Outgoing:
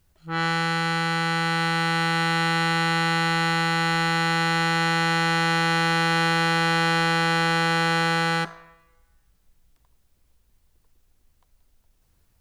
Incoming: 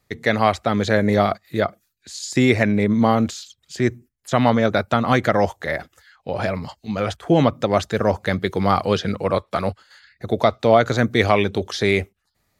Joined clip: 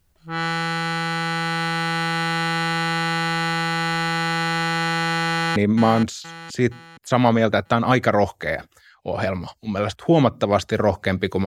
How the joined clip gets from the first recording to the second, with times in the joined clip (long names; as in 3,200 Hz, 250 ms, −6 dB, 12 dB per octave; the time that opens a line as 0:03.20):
outgoing
0:05.30–0:05.56: delay throw 470 ms, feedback 45%, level −8.5 dB
0:05.56: continue with incoming from 0:02.77